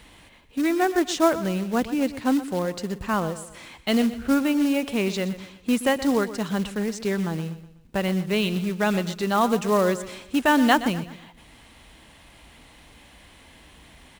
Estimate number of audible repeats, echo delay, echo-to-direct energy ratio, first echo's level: 3, 123 ms, −13.0 dB, −14.0 dB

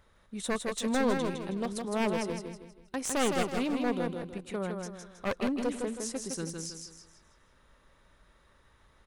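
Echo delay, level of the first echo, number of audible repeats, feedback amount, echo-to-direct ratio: 160 ms, −4.5 dB, 4, 38%, −4.0 dB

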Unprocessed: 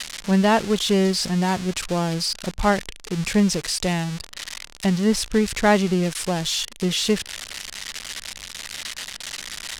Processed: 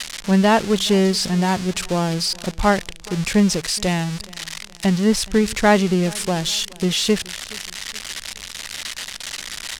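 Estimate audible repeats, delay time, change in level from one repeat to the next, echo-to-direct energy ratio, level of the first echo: 2, 421 ms, −7.5 dB, −22.5 dB, −23.5 dB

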